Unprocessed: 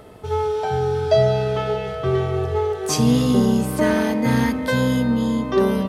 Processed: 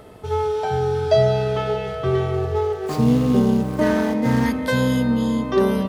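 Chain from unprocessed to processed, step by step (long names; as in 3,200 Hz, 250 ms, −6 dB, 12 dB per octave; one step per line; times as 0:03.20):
0:02.34–0:04.46: running median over 15 samples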